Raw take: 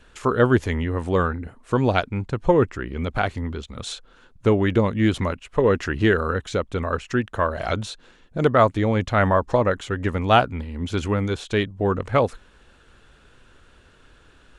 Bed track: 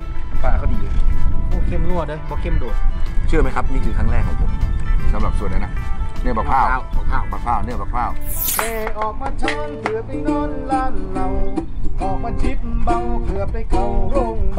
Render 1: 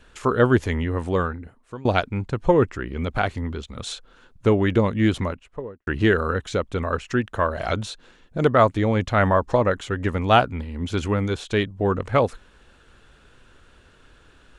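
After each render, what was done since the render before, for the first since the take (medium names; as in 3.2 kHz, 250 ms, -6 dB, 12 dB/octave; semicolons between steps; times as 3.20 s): 1.00–1.85 s: fade out, to -22 dB; 5.05–5.87 s: studio fade out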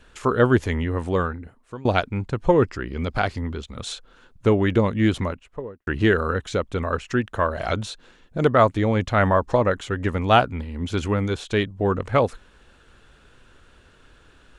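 2.50–3.38 s: peaking EQ 4.9 kHz +12.5 dB 0.27 oct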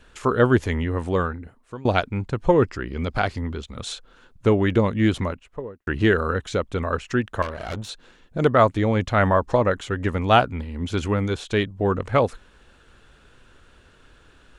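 7.42–7.89 s: valve stage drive 25 dB, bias 0.7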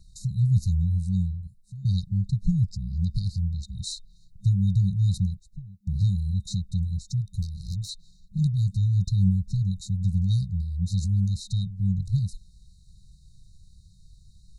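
FFT band-reject 200–3700 Hz; bass shelf 320 Hz +4 dB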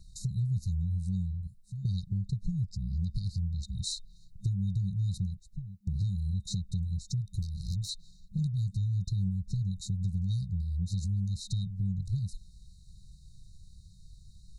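compression 4:1, threshold -29 dBFS, peak gain reduction 11 dB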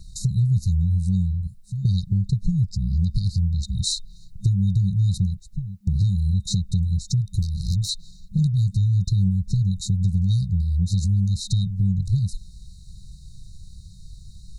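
trim +10.5 dB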